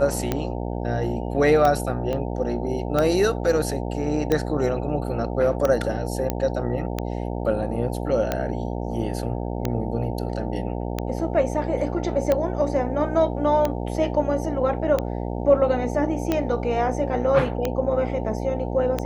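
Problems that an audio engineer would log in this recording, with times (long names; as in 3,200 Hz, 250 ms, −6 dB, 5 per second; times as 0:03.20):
mains buzz 60 Hz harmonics 15 −28 dBFS
scratch tick 45 rpm −9 dBFS
0:02.13: click −16 dBFS
0:06.30: click −9 dBFS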